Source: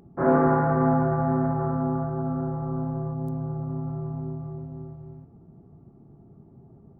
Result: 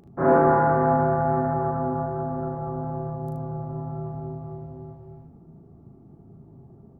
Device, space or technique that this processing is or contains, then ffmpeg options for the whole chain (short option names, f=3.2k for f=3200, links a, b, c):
slapback doubling: -filter_complex "[0:a]asplit=3[a][b][c];[b]adelay=37,volume=-4dB[d];[c]adelay=75,volume=-6dB[e];[a][d][e]amix=inputs=3:normalize=0"